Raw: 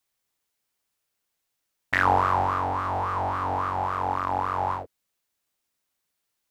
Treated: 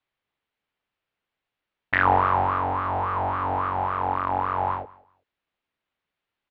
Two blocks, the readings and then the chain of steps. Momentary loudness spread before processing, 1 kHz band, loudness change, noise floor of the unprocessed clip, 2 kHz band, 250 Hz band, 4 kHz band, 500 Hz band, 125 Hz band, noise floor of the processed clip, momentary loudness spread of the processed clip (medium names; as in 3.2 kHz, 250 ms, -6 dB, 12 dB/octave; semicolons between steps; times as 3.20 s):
6 LU, +1.5 dB, +1.5 dB, -80 dBFS, +1.5 dB, +1.5 dB, no reading, +1.5 dB, +1.0 dB, under -85 dBFS, 7 LU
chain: low-pass 3.3 kHz 24 dB/octave; feedback delay 190 ms, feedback 19%, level -22.5 dB; trim +1.5 dB